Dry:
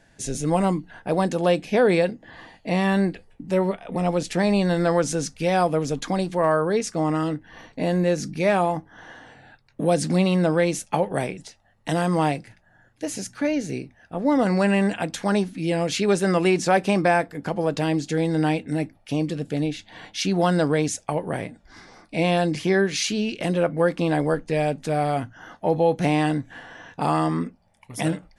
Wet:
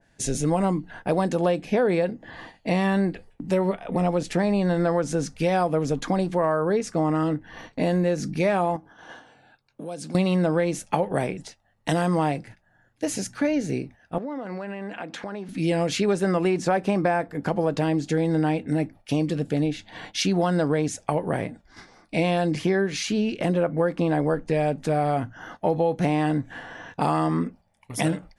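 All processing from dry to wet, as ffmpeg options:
ffmpeg -i in.wav -filter_complex "[0:a]asettb=1/sr,asplit=3[link_01][link_02][link_03];[link_01]atrim=end=8.764[link_04];[link_02]atrim=start=8.76:end=10.15,asetpts=PTS-STARTPTS,afade=type=in:duration=0.004:curve=qsin,afade=type=out:start_time=1.386:duration=0.004:curve=qsin,bandreject=frequency=1900:width=5.1,acompressor=threshold=-38dB:ratio=3:attack=3.2:release=140:knee=1:detection=peak,lowshelf=frequency=120:gain=-11[link_05];[link_03]atrim=start=10.146[link_06];[link_04][link_05]acrossfade=duration=0.004:curve1=hsin:curve2=qsin[link_07];[link_07][link_06]acrossfade=duration=0.004:curve1=qsin:curve2=hsin,asettb=1/sr,asplit=3[link_08][link_09][link_10];[link_08]atrim=end=14.184[link_11];[link_09]atrim=start=14.18:end=15.49,asetpts=PTS-STARTPTS,afade=type=in:duration=0.004:curve=qsin,afade=type=out:start_time=1.306:duration=0.004:curve=qsin,highpass=220,lowpass=2500,aemphasis=mode=production:type=50fm,acompressor=threshold=-32dB:ratio=8:attack=3.2:release=140:knee=1:detection=peak[link_12];[link_10]atrim=start=15.486[link_13];[link_11][link_12]acrossfade=duration=0.004:curve1=hsin:curve2=qsin[link_14];[link_14][link_13]acrossfade=duration=0.004:curve1=qsin:curve2=hsin,agate=range=-8dB:threshold=-45dB:ratio=16:detection=peak,acompressor=threshold=-22dB:ratio=4,adynamicequalizer=threshold=0.00562:dfrequency=2100:dqfactor=0.7:tfrequency=2100:tqfactor=0.7:attack=5:release=100:ratio=0.375:range=4:mode=cutabove:tftype=highshelf,volume=3dB" out.wav

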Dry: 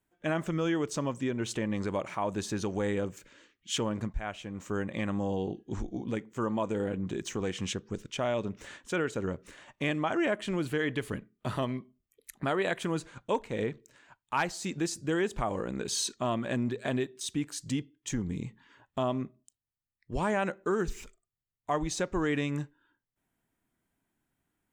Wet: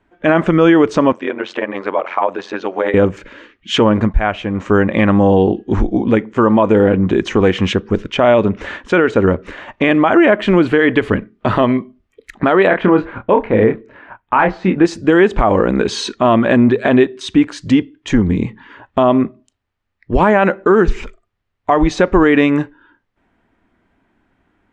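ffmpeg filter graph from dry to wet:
ffmpeg -i in.wav -filter_complex "[0:a]asettb=1/sr,asplit=3[link_01][link_02][link_03];[link_01]atrim=end=1.124[link_04];[link_02]atrim=start=1.12:end=2.94,asetpts=PTS-STARTPTS,afade=type=in:duration=0.004:curve=qsin,afade=type=out:start_time=1.816:duration=0.004:curve=qsin,tremolo=f=90:d=0.889,highpass=480,lowpass=4800[link_05];[link_03]atrim=start=2.936[link_06];[link_04][link_05]acrossfade=duration=0.004:curve1=hsin:curve2=qsin[link_07];[link_07][link_06]acrossfade=duration=0.004:curve1=qsin:curve2=hsin,asettb=1/sr,asplit=3[link_08][link_09][link_10];[link_08]atrim=end=12.674[link_11];[link_09]atrim=start=12.67:end=14.85,asetpts=PTS-STARTPTS,afade=type=in:duration=0.004:curve=qsin,afade=type=out:start_time=2.176:duration=0.004:curve=qsin,lowpass=2100,asplit=2[link_12][link_13];[link_13]adelay=27,volume=-6dB[link_14];[link_12][link_14]amix=inputs=2:normalize=0,atrim=end_sample=96138[link_15];[link_10]atrim=start=14.846[link_16];[link_11][link_15]acrossfade=duration=0.004:curve1=hsin:curve2=qsin[link_17];[link_17][link_16]acrossfade=duration=0.004:curve1=qsin:curve2=hsin,lowpass=2400,equalizer=frequency=140:width_type=o:width=0.37:gain=-12.5,alimiter=level_in=22.5dB:limit=-1dB:release=50:level=0:latency=1,volume=-1dB" out.wav

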